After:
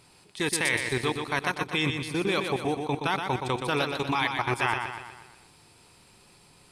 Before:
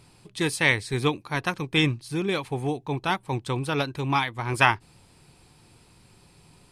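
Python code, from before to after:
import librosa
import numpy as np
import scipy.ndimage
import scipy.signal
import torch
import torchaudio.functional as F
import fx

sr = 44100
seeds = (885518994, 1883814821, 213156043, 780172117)

y = fx.low_shelf(x, sr, hz=240.0, db=-10.0)
y = fx.level_steps(y, sr, step_db=16)
y = fx.echo_feedback(y, sr, ms=122, feedback_pct=52, wet_db=-6)
y = y * librosa.db_to_amplitude(6.0)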